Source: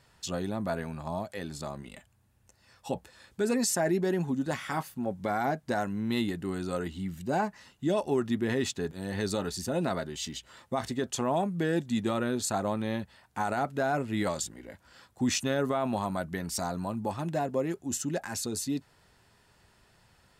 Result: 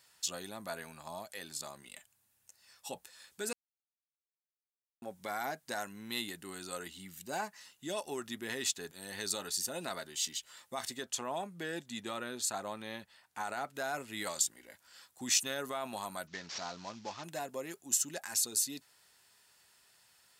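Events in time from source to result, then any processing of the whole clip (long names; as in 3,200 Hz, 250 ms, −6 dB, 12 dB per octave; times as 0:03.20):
0:03.53–0:05.02: silence
0:11.03–0:13.75: high-shelf EQ 5,400 Hz −8.5 dB
0:16.27–0:17.24: variable-slope delta modulation 32 kbit/s
whole clip: spectral tilt +4 dB per octave; level −7 dB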